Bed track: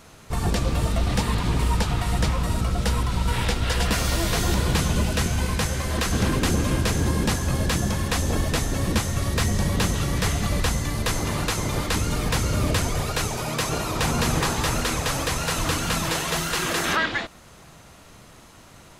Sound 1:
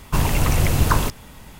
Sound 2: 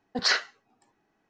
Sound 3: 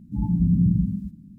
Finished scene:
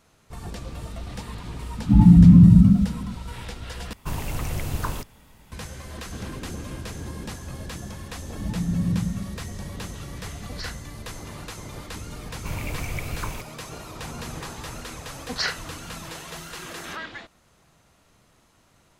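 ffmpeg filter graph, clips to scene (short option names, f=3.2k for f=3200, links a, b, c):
-filter_complex "[3:a]asplit=2[a][b];[1:a]asplit=2[c][d];[2:a]asplit=2[e][f];[0:a]volume=-12.5dB[g];[a]alimiter=level_in=15.5dB:limit=-1dB:release=50:level=0:latency=1[h];[d]equalizer=f=2.3k:t=o:w=0.25:g=14[i];[g]asplit=2[j][k];[j]atrim=end=3.934[l];[c]atrim=end=1.59,asetpts=PTS-STARTPTS,volume=-10.5dB[m];[k]atrim=start=5.516[n];[h]atrim=end=1.38,asetpts=PTS-STARTPTS,volume=-3dB,afade=t=in:d=0.004:c=hsin,afade=t=out:st=1.376:d=0.004:c=hsin,adelay=1770[o];[b]atrim=end=1.38,asetpts=PTS-STARTPTS,volume=-5dB,afade=t=in:d=0.004:c=hsin,afade=t=out:st=1.376:d=0.004:c=hsin,adelay=8270[p];[e]atrim=end=1.29,asetpts=PTS-STARTPTS,volume=-14dB,afade=t=in:d=0.004:c=hsin,afade=t=out:st=1.286:d=0.004:c=hsin,adelay=455994S[q];[i]atrim=end=1.59,asetpts=PTS-STARTPTS,volume=-14.5dB,afade=t=in:d=0.004:c=hsin,afade=t=out:st=1.586:d=0.004:c=hsin,adelay=12320[r];[f]atrim=end=1.29,asetpts=PTS-STARTPTS,volume=-3dB,afade=t=in:d=0.004:c=hsin,afade=t=out:st=1.286:d=0.004:c=hsin,adelay=15140[s];[l][m]acrossfade=d=0.004:c1=hsin:c2=hsin[t];[t][n]acrossfade=d=0.004:c1=hsin:c2=hsin[u];[u][o][p][q][r][s]amix=inputs=6:normalize=0"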